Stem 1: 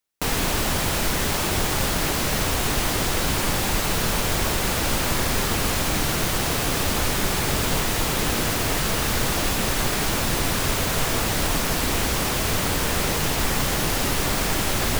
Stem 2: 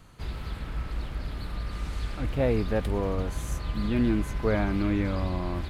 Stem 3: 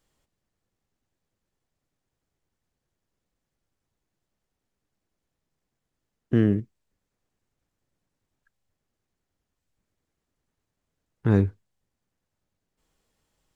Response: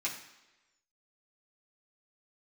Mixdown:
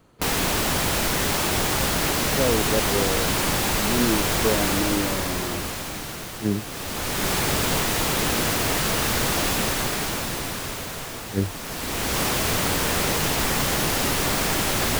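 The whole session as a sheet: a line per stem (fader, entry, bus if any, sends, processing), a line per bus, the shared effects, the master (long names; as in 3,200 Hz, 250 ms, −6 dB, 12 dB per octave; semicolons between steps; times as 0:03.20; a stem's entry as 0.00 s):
+1.0 dB, 0.00 s, no send, automatic ducking −12 dB, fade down 1.70 s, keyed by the third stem
−5.0 dB, 0.00 s, no send, parametric band 410 Hz +9.5 dB 1.9 octaves
0.0 dB, 0.00 s, no send, level that may rise only so fast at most 380 dB per second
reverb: not used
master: low-shelf EQ 69 Hz −8 dB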